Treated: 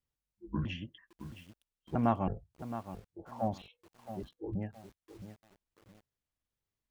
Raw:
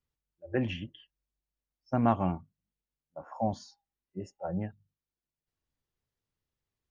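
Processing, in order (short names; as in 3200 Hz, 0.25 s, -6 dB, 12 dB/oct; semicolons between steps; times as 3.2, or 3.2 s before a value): trilling pitch shifter -9 st, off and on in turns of 0.325 s; lo-fi delay 0.668 s, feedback 35%, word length 8-bit, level -11 dB; gain -3 dB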